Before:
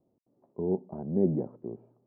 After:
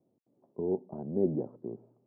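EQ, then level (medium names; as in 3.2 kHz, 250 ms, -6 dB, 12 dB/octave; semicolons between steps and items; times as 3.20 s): high-pass 100 Hz; low-pass 1 kHz 6 dB/octave; dynamic bell 180 Hz, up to -7 dB, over -43 dBFS, Q 2.4; 0.0 dB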